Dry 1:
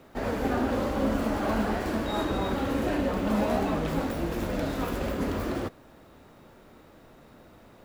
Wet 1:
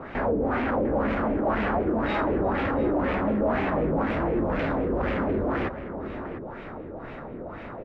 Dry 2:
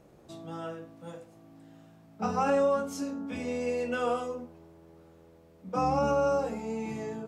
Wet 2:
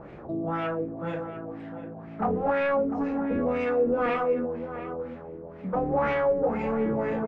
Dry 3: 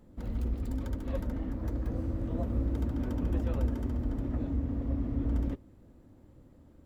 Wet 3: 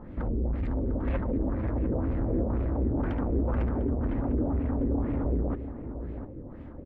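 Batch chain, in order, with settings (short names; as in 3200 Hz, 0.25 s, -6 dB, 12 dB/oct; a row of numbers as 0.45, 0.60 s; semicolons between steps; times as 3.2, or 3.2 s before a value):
in parallel at +2.5 dB: compressor, threshold -41 dBFS; on the sum: soft clip -30.5 dBFS; LFO low-pass sine 2 Hz 390–2400 Hz; outdoor echo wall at 120 m, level -10 dB; gain +5.5 dB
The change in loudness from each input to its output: +2.5, +3.0, +4.0 LU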